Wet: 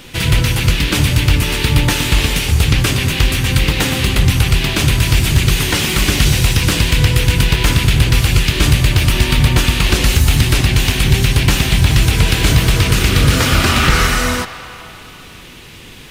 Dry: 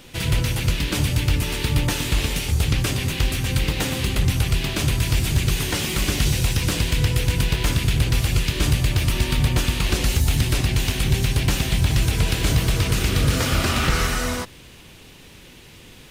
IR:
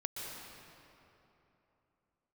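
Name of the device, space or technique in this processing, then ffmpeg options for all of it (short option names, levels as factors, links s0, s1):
filtered reverb send: -filter_complex "[0:a]asplit=2[s0][s1];[s1]highpass=f=590:w=0.5412,highpass=f=590:w=1.3066,lowpass=4500[s2];[1:a]atrim=start_sample=2205[s3];[s2][s3]afir=irnorm=-1:irlink=0,volume=0.376[s4];[s0][s4]amix=inputs=2:normalize=0,volume=2.37"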